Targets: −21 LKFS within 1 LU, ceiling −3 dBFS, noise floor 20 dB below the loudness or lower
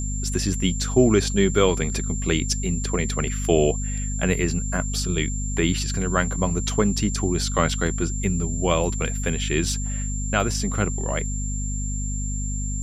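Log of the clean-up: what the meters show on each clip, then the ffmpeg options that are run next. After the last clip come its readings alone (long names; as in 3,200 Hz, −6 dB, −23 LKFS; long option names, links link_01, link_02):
mains hum 50 Hz; hum harmonics up to 250 Hz; level of the hum −25 dBFS; interfering tone 7,300 Hz; level of the tone −32 dBFS; integrated loudness −23.5 LKFS; sample peak −4.5 dBFS; target loudness −21.0 LKFS
→ -af "bandreject=frequency=50:width_type=h:width=4,bandreject=frequency=100:width_type=h:width=4,bandreject=frequency=150:width_type=h:width=4,bandreject=frequency=200:width_type=h:width=4,bandreject=frequency=250:width_type=h:width=4"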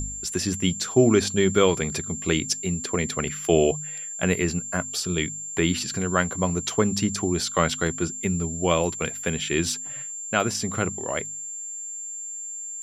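mains hum none found; interfering tone 7,300 Hz; level of the tone −32 dBFS
→ -af "bandreject=frequency=7300:width=30"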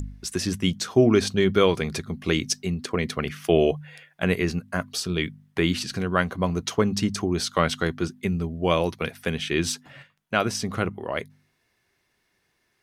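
interfering tone none found; integrated loudness −25.0 LKFS; sample peak −5.0 dBFS; target loudness −21.0 LKFS
→ -af "volume=4dB,alimiter=limit=-3dB:level=0:latency=1"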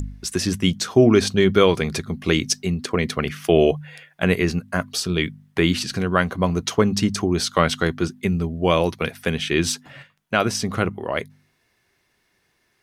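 integrated loudness −21.5 LKFS; sample peak −3.0 dBFS; background noise floor −68 dBFS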